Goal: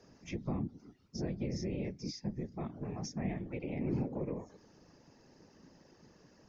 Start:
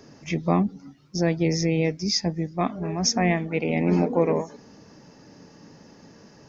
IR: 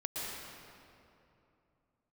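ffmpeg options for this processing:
-filter_complex "[0:a]afftfilt=real='hypot(re,im)*cos(2*PI*random(0))':imag='hypot(re,im)*sin(2*PI*random(1))':win_size=512:overlap=0.75,acrossover=split=360[s0][s1];[s1]acompressor=threshold=0.0112:ratio=6[s2];[s0][s2]amix=inputs=2:normalize=0,volume=0.501"

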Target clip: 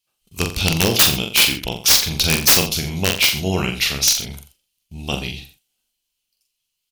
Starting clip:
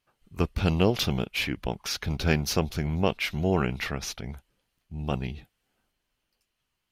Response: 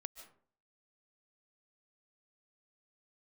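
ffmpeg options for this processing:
-filter_complex "[0:a]agate=range=0.2:threshold=0.00141:ratio=16:detection=peak,aexciter=amount=6.6:drive=4.6:freq=2500,aeval=exprs='(mod(2.24*val(0)+1,2)-1)/2.24':c=same,asplit=2[s0][s1];[s1]adelay=43,volume=0.562[s2];[s0][s2]amix=inputs=2:normalize=0,asplit=2[s3][s4];[s4]aecho=0:1:87:0.237[s5];[s3][s5]amix=inputs=2:normalize=0,volume=1.26"

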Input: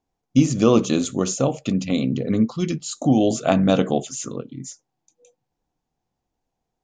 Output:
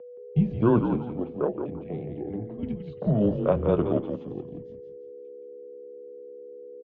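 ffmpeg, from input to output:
-filter_complex "[0:a]afwtdn=0.0447,asettb=1/sr,asplit=3[s0][s1][s2];[s0]atrim=end=0.884[s3];[s1]atrim=start=0.88:end=2.63,asetpts=PTS-STARTPTS,afade=t=in:d=0.004:c=qsin,afade=t=out:st=1.746:d=0.004:c=qsin,acrossover=split=350 2600:gain=0.2 1 0.0891[s4][s5][s6];[s4][s5][s6]amix=inputs=3:normalize=0[s7];[s2]atrim=start=2.626[s8];[s3][s7]acrossfade=d=0.004:c1=hsin:c2=qsin[s9];[s9][s8]acrossfade=d=0.004:c1=qsin:c2=hsin,aeval=exprs='val(0)+0.0126*sin(2*PI*600*n/s)':c=same,asplit=2[s10][s11];[s11]asplit=4[s12][s13][s14][s15];[s12]adelay=171,afreqshift=-71,volume=0.501[s16];[s13]adelay=342,afreqshift=-142,volume=0.186[s17];[s14]adelay=513,afreqshift=-213,volume=0.0684[s18];[s15]adelay=684,afreqshift=-284,volume=0.0254[s19];[s16][s17][s18][s19]amix=inputs=4:normalize=0[s20];[s10][s20]amix=inputs=2:normalize=0,highpass=f=260:t=q:w=0.5412,highpass=f=260:t=q:w=1.307,lowpass=f=3500:t=q:w=0.5176,lowpass=f=3500:t=q:w=0.7071,lowpass=f=3500:t=q:w=1.932,afreqshift=-110,volume=0.708"

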